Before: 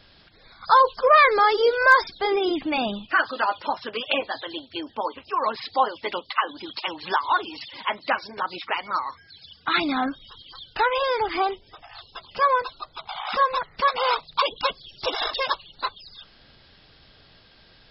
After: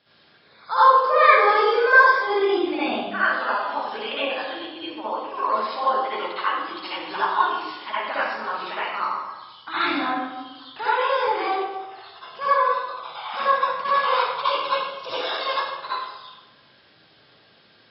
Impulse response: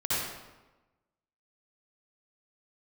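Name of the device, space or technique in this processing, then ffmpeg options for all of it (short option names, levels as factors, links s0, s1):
supermarket ceiling speaker: -filter_complex "[0:a]highpass=210,lowpass=5000[s0];[1:a]atrim=start_sample=2205[s1];[s0][s1]afir=irnorm=-1:irlink=0,volume=0.376"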